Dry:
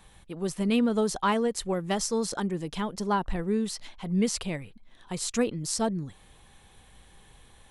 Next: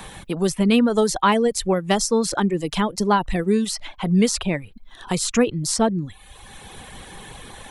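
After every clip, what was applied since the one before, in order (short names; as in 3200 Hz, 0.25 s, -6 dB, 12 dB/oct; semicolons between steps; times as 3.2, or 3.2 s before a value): reverb removal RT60 0.69 s; three-band squash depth 40%; gain +9 dB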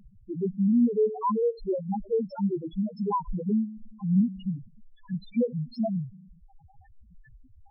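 spring tank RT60 1.7 s, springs 37 ms, chirp 80 ms, DRR 13.5 dB; treble ducked by the level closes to 1800 Hz, closed at -13.5 dBFS; loudest bins only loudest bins 1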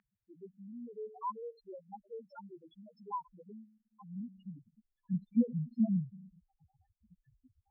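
band-pass sweep 1800 Hz -> 210 Hz, 3.81–5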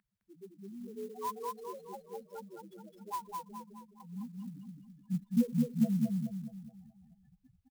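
feedback echo 0.211 s, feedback 45%, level -3 dB; clock jitter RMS 0.034 ms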